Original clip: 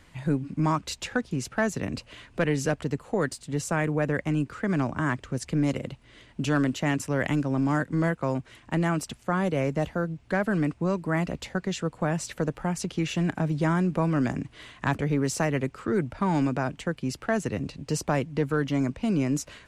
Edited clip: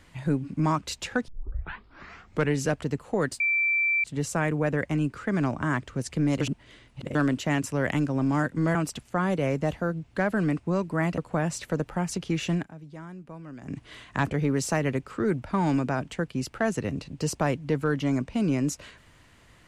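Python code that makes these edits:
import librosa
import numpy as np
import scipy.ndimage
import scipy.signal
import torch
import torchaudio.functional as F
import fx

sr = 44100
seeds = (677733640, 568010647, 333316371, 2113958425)

y = fx.edit(x, sr, fx.tape_start(start_s=1.28, length_s=1.26),
    fx.insert_tone(at_s=3.4, length_s=0.64, hz=2340.0, db=-21.0),
    fx.reverse_span(start_s=5.77, length_s=0.74),
    fx.cut(start_s=8.11, length_s=0.78),
    fx.cut(start_s=11.32, length_s=0.54),
    fx.fade_down_up(start_s=13.22, length_s=1.23, db=-17.5, fade_s=0.15), tone=tone)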